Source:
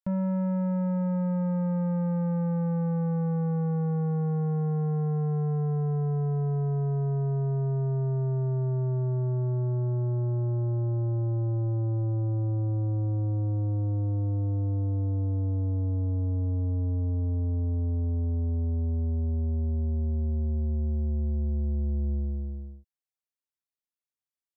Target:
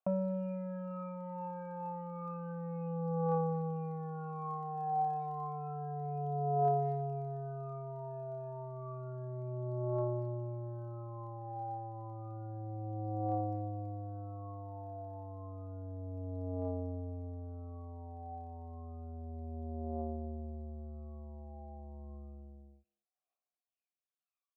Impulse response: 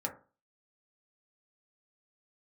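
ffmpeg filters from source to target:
-filter_complex "[0:a]asplit=3[s0][s1][s2];[s0]bandpass=f=730:t=q:w=8,volume=1[s3];[s1]bandpass=f=1090:t=q:w=8,volume=0.501[s4];[s2]bandpass=f=2440:t=q:w=8,volume=0.355[s5];[s3][s4][s5]amix=inputs=3:normalize=0,aphaser=in_gain=1:out_gain=1:delay=1.3:decay=0.75:speed=0.3:type=triangular,asplit=2[s6][s7];[s7]adelay=230,highpass=300,lowpass=3400,asoftclip=type=hard:threshold=0.0141,volume=0.0501[s8];[s6][s8]amix=inputs=2:normalize=0,volume=2.37"

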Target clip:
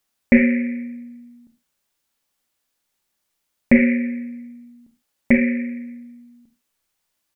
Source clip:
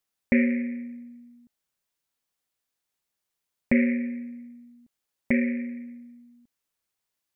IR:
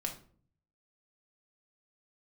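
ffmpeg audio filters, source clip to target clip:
-filter_complex "[0:a]asplit=2[s0][s1];[s1]adelay=48,volume=0.251[s2];[s0][s2]amix=inputs=2:normalize=0,asplit=2[s3][s4];[1:a]atrim=start_sample=2205,afade=t=out:st=0.18:d=0.01,atrim=end_sample=8379,asetrate=52920,aresample=44100[s5];[s4][s5]afir=irnorm=-1:irlink=0,volume=0.75[s6];[s3][s6]amix=inputs=2:normalize=0,volume=1.58"

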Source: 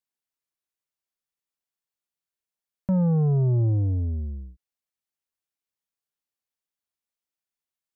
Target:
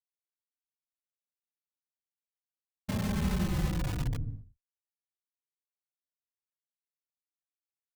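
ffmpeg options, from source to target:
-filter_complex "[0:a]afftfilt=real='hypot(re,im)*cos(2*PI*random(0))':imag='hypot(re,im)*sin(2*PI*random(1))':win_size=512:overlap=0.75,asplit=2[s0][s1];[s1]aeval=exprs='(mod(20*val(0)+1,2)-1)/20':c=same,volume=0.596[s2];[s0][s2]amix=inputs=2:normalize=0,agate=range=0.0224:threshold=0.0282:ratio=3:detection=peak,equalizer=f=420:t=o:w=2.6:g=-6.5,asplit=2[s3][s4];[s4]adelay=3.6,afreqshift=-0.52[s5];[s3][s5]amix=inputs=2:normalize=1,volume=1.26"

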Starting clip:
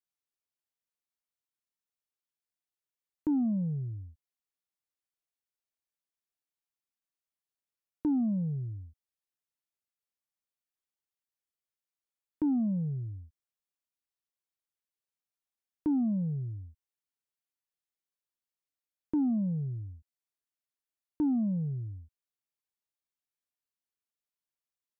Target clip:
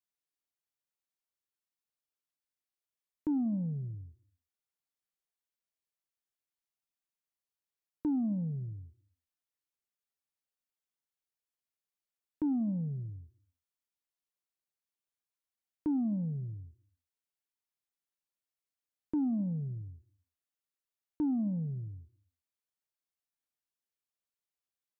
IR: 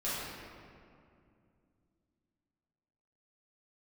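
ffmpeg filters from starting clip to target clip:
-filter_complex "[0:a]asplit=2[s0][s1];[1:a]atrim=start_sample=2205,afade=t=out:st=0.39:d=0.01,atrim=end_sample=17640,lowshelf=f=170:g=-11.5[s2];[s1][s2]afir=irnorm=-1:irlink=0,volume=0.0708[s3];[s0][s3]amix=inputs=2:normalize=0,volume=0.708"

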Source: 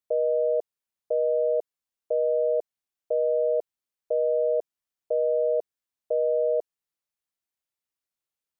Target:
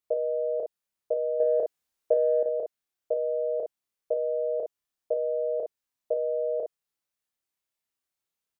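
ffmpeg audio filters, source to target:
-filter_complex "[0:a]asettb=1/sr,asplit=3[s0][s1][s2];[s0]atrim=end=1.404[s3];[s1]atrim=start=1.4:end=2.43,asetpts=PTS-STARTPTS,afade=t=in:d=0.004:c=qsin,afade=t=out:st=1.026:d=0.004:c=qsin,acontrast=24[s4];[s2]atrim=start=2.426[s5];[s3][s4]acrossfade=d=0.004:c1=hsin:c2=qsin[s6];[s6][s5]acrossfade=d=0.004:c1=qsin:c2=hsin,aecho=1:1:30|60:0.668|0.447"

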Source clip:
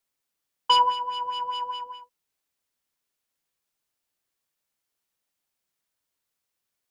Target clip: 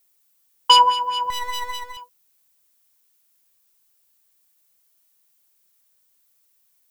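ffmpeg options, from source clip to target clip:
-filter_complex "[0:a]asettb=1/sr,asplit=3[s0][s1][s2];[s0]atrim=end=1.304[s3];[s1]atrim=start=1.3:end=1.97,asetpts=PTS-STARTPTS,afade=t=in:d=0.004:c=qsin,afade=t=out:st=0.666:d=0.004:c=qsin,aeval=exprs='max(val(0),0)':c=same[s4];[s2]atrim=start=1.966[s5];[s3][s4]acrossfade=d=0.004:c1=hsin:c2=qsin[s6];[s6][s5]acrossfade=d=0.004:c1=qsin:c2=hsin,aemphasis=mode=production:type=50kf,volume=1.88"

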